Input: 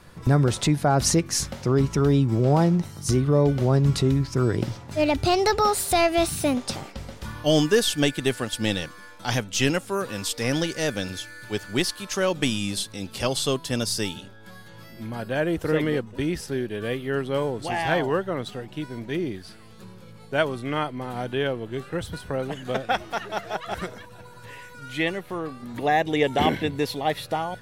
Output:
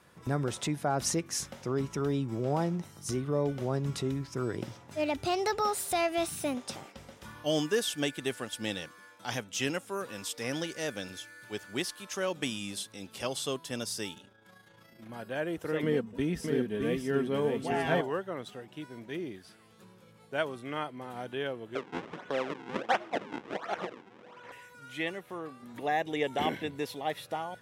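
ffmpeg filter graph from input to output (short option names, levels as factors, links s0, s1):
-filter_complex "[0:a]asettb=1/sr,asplit=3[s0][s1][s2];[s0]atrim=end=14.144[s3];[s1]atrim=start=14.14:end=15.09,asetpts=PTS-STARTPTS,afade=t=in:d=0.004:c=qsin,afade=t=out:st=0.946:d=0.004:c=qsin,highshelf=f=9500:g=-4.5,tremolo=f=28:d=0.519,aeval=exprs='0.0282*(abs(mod(val(0)/0.0282+3,4)-2)-1)':c=same[s4];[s2]atrim=start=15.086[s5];[s3][s4]acrossfade=d=0.004:c1=hsin:c2=qsin[s6];[s6][s5]acrossfade=d=0.004:c1=qsin:c2=hsin,asettb=1/sr,asplit=3[s7][s8][s9];[s7]atrim=end=15.834[s10];[s8]atrim=start=15.83:end=18.01,asetpts=PTS-STARTPTS,afade=t=in:d=0.004:c=qsin,afade=t=out:st=2.176:d=0.004:c=qsin,lowshelf=f=330:g=11,aecho=1:1:4.4:0.43,atrim=end_sample=96138,aecho=1:1:612:0.596,atrim=end_sample=96138[s11];[s9]atrim=start=18.006[s12];[s10][s11]acrossfade=d=0.004:c1=hsin:c2=qsin[s13];[s13][s12]acrossfade=d=0.004:c1=qsin:c2=hsin,asettb=1/sr,asplit=3[s14][s15][s16];[s14]atrim=end=21.754[s17];[s15]atrim=start=21.75:end=24.52,asetpts=PTS-STARTPTS,afade=t=in:d=0.004:c=qsin,afade=t=out:st=2.766:d=0.004:c=qsin,acrusher=samples=42:mix=1:aa=0.000001:lfo=1:lforange=67.2:lforate=1.4,acontrast=51,highpass=240,lowpass=3200[s18];[s16]atrim=start=24.516[s19];[s17][s18]acrossfade=d=0.004:c1=hsin:c2=qsin[s20];[s20][s19]acrossfade=d=0.004:c1=qsin:c2=hsin,highpass=f=220:p=1,equalizer=f=4400:w=5.4:g=-5.5,volume=0.398"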